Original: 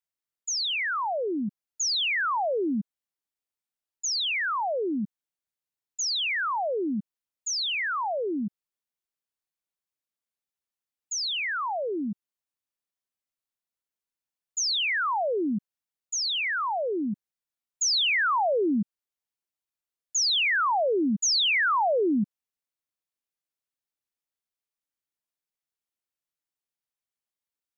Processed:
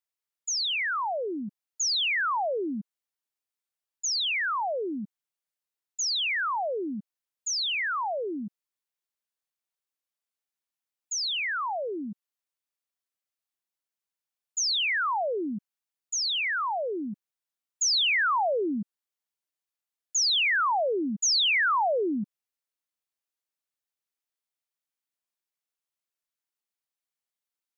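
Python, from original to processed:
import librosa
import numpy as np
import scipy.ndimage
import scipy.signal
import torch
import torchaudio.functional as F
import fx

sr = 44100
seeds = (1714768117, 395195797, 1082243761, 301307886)

y = fx.low_shelf(x, sr, hz=280.0, db=-9.0)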